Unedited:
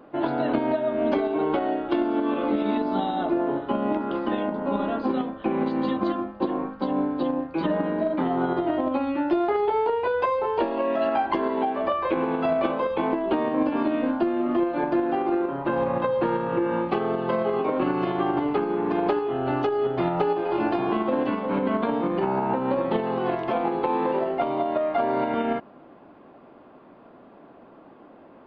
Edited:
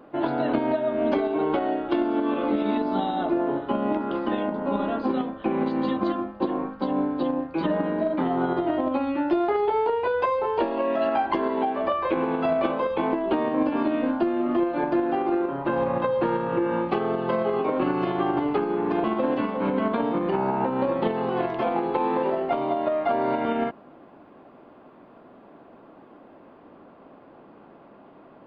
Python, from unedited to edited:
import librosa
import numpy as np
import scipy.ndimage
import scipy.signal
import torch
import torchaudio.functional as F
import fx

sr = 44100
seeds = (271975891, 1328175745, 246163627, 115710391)

y = fx.edit(x, sr, fx.cut(start_s=19.04, length_s=1.89), tone=tone)